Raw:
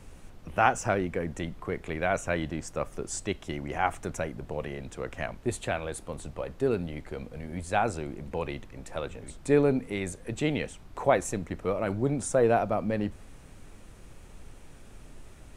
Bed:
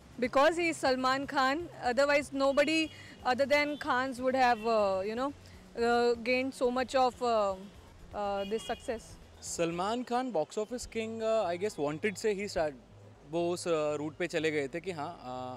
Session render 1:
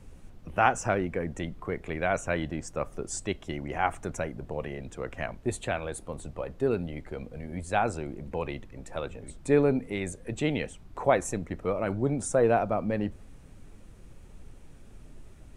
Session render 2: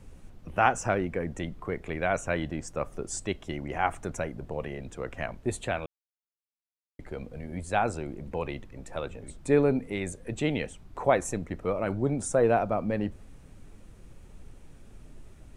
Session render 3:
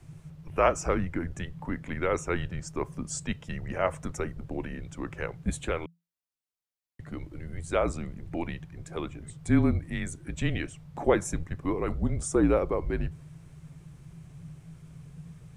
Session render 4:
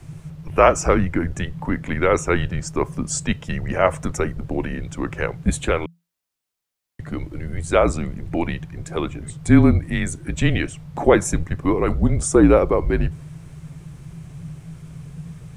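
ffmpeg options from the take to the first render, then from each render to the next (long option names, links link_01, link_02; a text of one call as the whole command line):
ffmpeg -i in.wav -af "afftdn=noise_reduction=6:noise_floor=-50" out.wav
ffmpeg -i in.wav -filter_complex "[0:a]asplit=3[link_01][link_02][link_03];[link_01]atrim=end=5.86,asetpts=PTS-STARTPTS,afade=type=out:start_time=5.856:duration=0.004:curve=hsin[link_04];[link_02]atrim=start=5.86:end=6.99,asetpts=PTS-STARTPTS,volume=0[link_05];[link_03]atrim=start=6.99,asetpts=PTS-STARTPTS,afade=type=in:duration=0.004:curve=hsin[link_06];[link_04][link_05][link_06]concat=n=3:v=0:a=1" out.wav
ffmpeg -i in.wav -af "afreqshift=-170" out.wav
ffmpeg -i in.wav -af "volume=10dB,alimiter=limit=-1dB:level=0:latency=1" out.wav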